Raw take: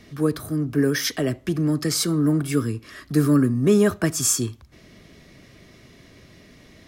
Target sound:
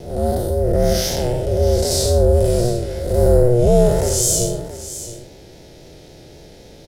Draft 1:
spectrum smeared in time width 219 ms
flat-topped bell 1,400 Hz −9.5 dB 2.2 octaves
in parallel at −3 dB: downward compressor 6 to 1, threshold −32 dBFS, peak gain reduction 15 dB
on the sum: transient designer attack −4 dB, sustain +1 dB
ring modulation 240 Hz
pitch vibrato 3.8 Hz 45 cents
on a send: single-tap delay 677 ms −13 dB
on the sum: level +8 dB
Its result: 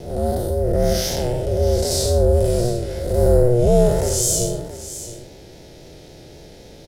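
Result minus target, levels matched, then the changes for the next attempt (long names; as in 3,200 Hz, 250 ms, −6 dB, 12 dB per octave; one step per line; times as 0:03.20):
downward compressor: peak gain reduction +8 dB
change: downward compressor 6 to 1, threshold −22.5 dBFS, peak gain reduction 7 dB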